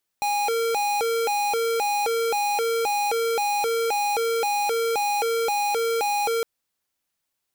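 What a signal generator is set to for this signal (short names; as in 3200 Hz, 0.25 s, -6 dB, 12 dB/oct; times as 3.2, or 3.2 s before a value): siren hi-lo 459–822 Hz 1.9/s square -23.5 dBFS 6.21 s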